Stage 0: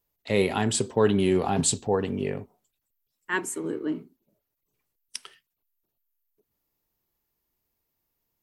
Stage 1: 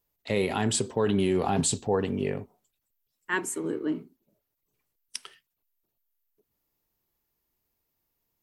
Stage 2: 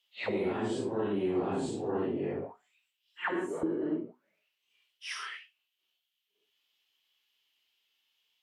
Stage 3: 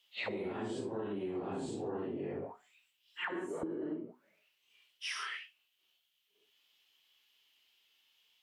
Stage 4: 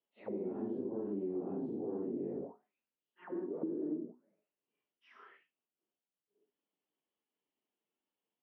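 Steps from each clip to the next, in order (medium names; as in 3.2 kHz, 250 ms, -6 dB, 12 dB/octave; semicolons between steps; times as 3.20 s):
peak limiter -15.5 dBFS, peak gain reduction 7 dB
phase randomisation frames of 200 ms; auto-wah 340–3100 Hz, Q 6.6, down, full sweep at -27.5 dBFS; spectrum-flattening compressor 2:1; trim +1 dB
compression 6:1, threshold -41 dBFS, peak gain reduction 14 dB; trim +4.5 dB
ladder band-pass 290 Hz, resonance 25%; trim +12 dB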